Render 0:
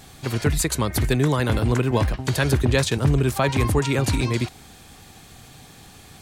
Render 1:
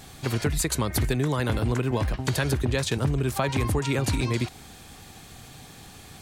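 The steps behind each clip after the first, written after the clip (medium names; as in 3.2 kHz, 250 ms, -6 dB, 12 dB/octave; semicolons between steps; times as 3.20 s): compression, threshold -21 dBFS, peak gain reduction 7.5 dB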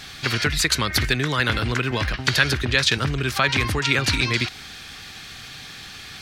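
high-order bell 2.7 kHz +12.5 dB 2.5 oct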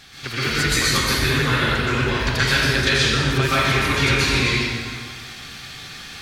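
plate-style reverb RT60 1.9 s, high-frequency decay 0.75×, pre-delay 110 ms, DRR -10 dB; trim -7.5 dB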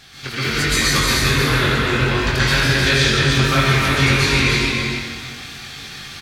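doubling 22 ms -5 dB; delay 305 ms -4.5 dB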